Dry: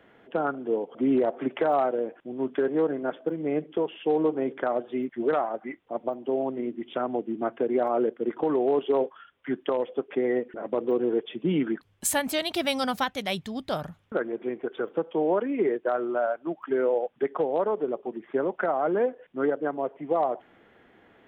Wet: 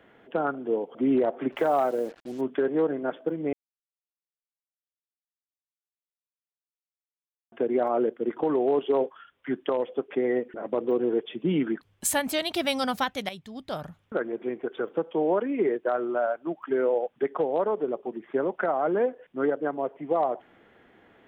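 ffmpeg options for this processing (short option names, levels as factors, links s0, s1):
-filter_complex "[0:a]asettb=1/sr,asplit=3[s0][s1][s2];[s0]atrim=end=1.524[s3];[s1]atrim=start=1.52:end=2.41,asetpts=PTS-STARTPTS,afade=t=in:d=0.004:c=qsin,afade=t=out:st=0.886:d=0.004:c=qsin,acrusher=bits=7:mix=0:aa=0.5[s4];[s2]atrim=start=2.406[s5];[s3][s4]acrossfade=d=0.004:c1=hsin:c2=qsin[s6];[s6][s5]acrossfade=d=0.004:c1=qsin:c2=hsin,asplit=4[s7][s8][s9][s10];[s7]atrim=end=3.53,asetpts=PTS-STARTPTS,afade=t=out:st=3.526:d=0.004:c=hsin[s11];[s8]atrim=start=3.53:end=7.52,asetpts=PTS-STARTPTS,volume=0[s12];[s9]atrim=start=7.52:end=13.29,asetpts=PTS-STARTPTS,afade=t=in:d=0.004:c=hsin,afade=t=out:st=5.766:d=0.004:c=hsin:silence=0.237137[s13];[s10]atrim=start=13.29,asetpts=PTS-STARTPTS,afade=t=in:d=1.22:c=qsin:silence=0.237137[s14];[s11][s12][s13][s14]concat=n=4:v=0:a=1"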